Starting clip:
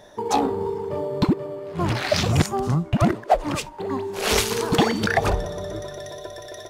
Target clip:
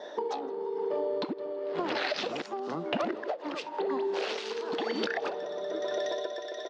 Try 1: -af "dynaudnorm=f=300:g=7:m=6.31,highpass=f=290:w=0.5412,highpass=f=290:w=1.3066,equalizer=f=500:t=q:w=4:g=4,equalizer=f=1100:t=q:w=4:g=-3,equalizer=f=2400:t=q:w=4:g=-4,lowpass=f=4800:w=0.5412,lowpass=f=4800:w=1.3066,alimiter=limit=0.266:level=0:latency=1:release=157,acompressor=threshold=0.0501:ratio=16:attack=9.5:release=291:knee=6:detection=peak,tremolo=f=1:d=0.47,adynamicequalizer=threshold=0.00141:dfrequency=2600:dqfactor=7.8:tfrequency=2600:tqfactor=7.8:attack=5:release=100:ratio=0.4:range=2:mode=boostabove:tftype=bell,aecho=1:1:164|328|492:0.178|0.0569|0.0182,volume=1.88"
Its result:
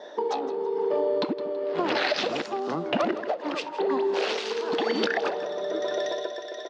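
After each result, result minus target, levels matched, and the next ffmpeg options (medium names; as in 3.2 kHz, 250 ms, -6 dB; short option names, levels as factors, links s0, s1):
echo-to-direct +9.5 dB; compression: peak gain reduction -5.5 dB
-af "dynaudnorm=f=300:g=7:m=6.31,highpass=f=290:w=0.5412,highpass=f=290:w=1.3066,equalizer=f=500:t=q:w=4:g=4,equalizer=f=1100:t=q:w=4:g=-3,equalizer=f=2400:t=q:w=4:g=-4,lowpass=f=4800:w=0.5412,lowpass=f=4800:w=1.3066,alimiter=limit=0.266:level=0:latency=1:release=157,acompressor=threshold=0.0501:ratio=16:attack=9.5:release=291:knee=6:detection=peak,tremolo=f=1:d=0.47,adynamicequalizer=threshold=0.00141:dfrequency=2600:dqfactor=7.8:tfrequency=2600:tqfactor=7.8:attack=5:release=100:ratio=0.4:range=2:mode=boostabove:tftype=bell,aecho=1:1:164|328:0.0596|0.0191,volume=1.88"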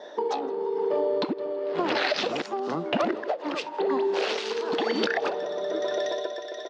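compression: peak gain reduction -5.5 dB
-af "dynaudnorm=f=300:g=7:m=6.31,highpass=f=290:w=0.5412,highpass=f=290:w=1.3066,equalizer=f=500:t=q:w=4:g=4,equalizer=f=1100:t=q:w=4:g=-3,equalizer=f=2400:t=q:w=4:g=-4,lowpass=f=4800:w=0.5412,lowpass=f=4800:w=1.3066,alimiter=limit=0.266:level=0:latency=1:release=157,acompressor=threshold=0.0251:ratio=16:attack=9.5:release=291:knee=6:detection=peak,tremolo=f=1:d=0.47,adynamicequalizer=threshold=0.00141:dfrequency=2600:dqfactor=7.8:tfrequency=2600:tqfactor=7.8:attack=5:release=100:ratio=0.4:range=2:mode=boostabove:tftype=bell,aecho=1:1:164|328:0.0596|0.0191,volume=1.88"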